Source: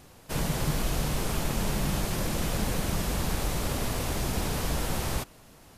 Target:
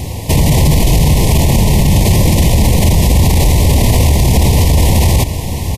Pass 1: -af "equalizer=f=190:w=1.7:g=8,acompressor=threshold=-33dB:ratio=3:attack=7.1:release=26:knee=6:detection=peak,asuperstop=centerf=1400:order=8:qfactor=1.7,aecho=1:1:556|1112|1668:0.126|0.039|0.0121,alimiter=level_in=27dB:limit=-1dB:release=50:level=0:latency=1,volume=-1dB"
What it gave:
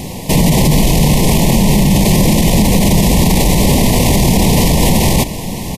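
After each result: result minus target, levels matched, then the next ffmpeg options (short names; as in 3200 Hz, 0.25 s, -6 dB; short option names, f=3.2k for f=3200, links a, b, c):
250 Hz band +4.5 dB; 125 Hz band -2.5 dB
-af "acompressor=threshold=-33dB:ratio=3:attack=7.1:release=26:knee=6:detection=peak,asuperstop=centerf=1400:order=8:qfactor=1.7,aecho=1:1:556|1112|1668:0.126|0.039|0.0121,alimiter=level_in=27dB:limit=-1dB:release=50:level=0:latency=1,volume=-1dB"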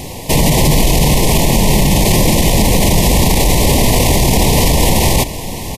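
125 Hz band -3.5 dB
-af "acompressor=threshold=-33dB:ratio=3:attack=7.1:release=26:knee=6:detection=peak,asuperstop=centerf=1400:order=8:qfactor=1.7,equalizer=f=82:w=0.96:g=13,aecho=1:1:556|1112|1668:0.126|0.039|0.0121,alimiter=level_in=27dB:limit=-1dB:release=50:level=0:latency=1,volume=-1dB"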